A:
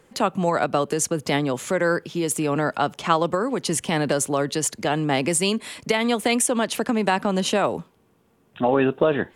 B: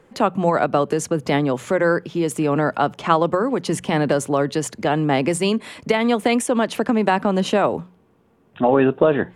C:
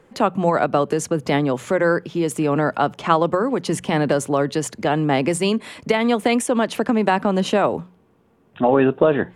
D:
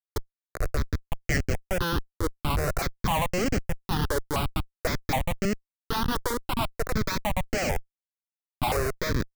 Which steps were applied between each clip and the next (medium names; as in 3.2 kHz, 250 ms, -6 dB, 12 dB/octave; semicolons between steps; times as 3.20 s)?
treble shelf 3.3 kHz -11.5 dB; hum notches 60/120/180 Hz; trim +4 dB
no audible change
band-pass sweep 5.9 kHz -> 930 Hz, 0.39–1.91 s; Schmitt trigger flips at -29.5 dBFS; stepped phaser 3.9 Hz 700–3600 Hz; trim +7 dB